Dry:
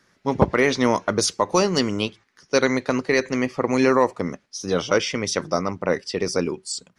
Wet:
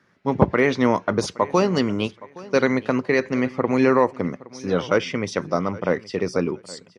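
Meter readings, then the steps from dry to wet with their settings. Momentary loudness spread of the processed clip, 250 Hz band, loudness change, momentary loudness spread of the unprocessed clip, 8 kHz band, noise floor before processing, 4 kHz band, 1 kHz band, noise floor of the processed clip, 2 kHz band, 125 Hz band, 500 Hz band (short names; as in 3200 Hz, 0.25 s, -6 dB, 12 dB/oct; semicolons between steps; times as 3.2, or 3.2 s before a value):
9 LU, +1.5 dB, 0.0 dB, 8 LU, -10.0 dB, -65 dBFS, -6.0 dB, 0.0 dB, -54 dBFS, -0.5 dB, +2.0 dB, +0.5 dB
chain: HPF 85 Hz; tone controls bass +3 dB, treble -12 dB; on a send: feedback echo 0.818 s, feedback 23%, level -20 dB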